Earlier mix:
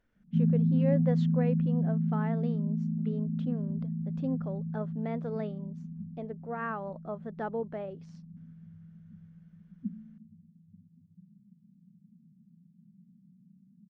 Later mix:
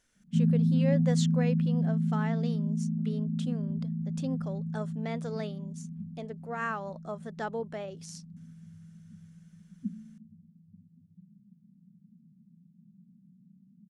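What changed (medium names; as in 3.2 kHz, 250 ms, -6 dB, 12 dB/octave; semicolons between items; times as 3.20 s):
speech -3.0 dB; master: remove tape spacing loss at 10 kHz 44 dB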